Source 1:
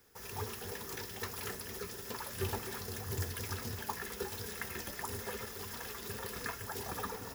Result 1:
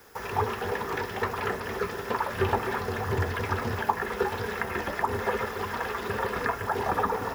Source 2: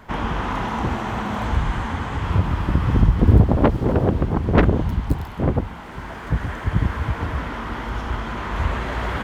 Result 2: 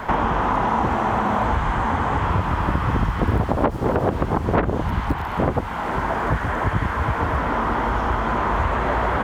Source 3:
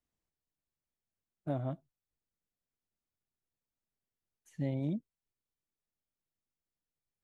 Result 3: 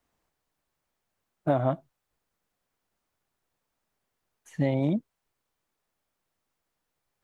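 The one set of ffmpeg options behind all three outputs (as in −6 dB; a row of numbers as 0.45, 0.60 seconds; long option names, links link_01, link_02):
-filter_complex "[0:a]acrossover=split=3200[link_01][link_02];[link_02]acompressor=threshold=-54dB:ratio=4:attack=1:release=60[link_03];[link_01][link_03]amix=inputs=2:normalize=0,equalizer=frequency=930:width=0.5:gain=9,acrossover=split=1000|5300[link_04][link_05][link_06];[link_04]acompressor=threshold=-30dB:ratio=4[link_07];[link_05]acompressor=threshold=-39dB:ratio=4[link_08];[link_06]acompressor=threshold=-58dB:ratio=4[link_09];[link_07][link_08][link_09]amix=inputs=3:normalize=0,volume=9dB"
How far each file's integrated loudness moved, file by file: +10.5, 0.0, +9.5 LU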